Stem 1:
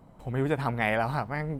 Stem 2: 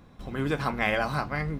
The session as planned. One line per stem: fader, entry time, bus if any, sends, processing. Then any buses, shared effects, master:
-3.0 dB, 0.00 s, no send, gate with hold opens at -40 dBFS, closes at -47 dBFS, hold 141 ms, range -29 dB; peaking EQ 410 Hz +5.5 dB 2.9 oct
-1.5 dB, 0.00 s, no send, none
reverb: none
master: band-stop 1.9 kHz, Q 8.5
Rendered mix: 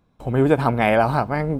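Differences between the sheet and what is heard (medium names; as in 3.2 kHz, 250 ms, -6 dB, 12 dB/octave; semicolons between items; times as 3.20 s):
stem 1 -3.0 dB -> +6.0 dB; stem 2 -1.5 dB -> -11.0 dB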